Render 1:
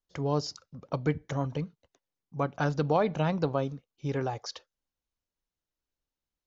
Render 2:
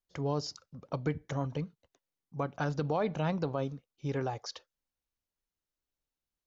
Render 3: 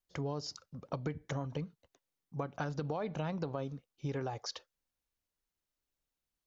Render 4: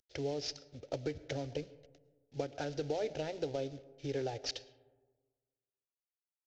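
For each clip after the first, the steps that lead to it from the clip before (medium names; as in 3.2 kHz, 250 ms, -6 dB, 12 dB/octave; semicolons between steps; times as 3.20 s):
peak limiter -18 dBFS, peak gain reduction 5 dB; trim -2.5 dB
compression, threshold -34 dBFS, peak gain reduction 8 dB; trim +1 dB
CVSD coder 32 kbps; static phaser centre 450 Hz, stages 4; reverberation RT60 1.4 s, pre-delay 70 ms, DRR 18.5 dB; trim +4 dB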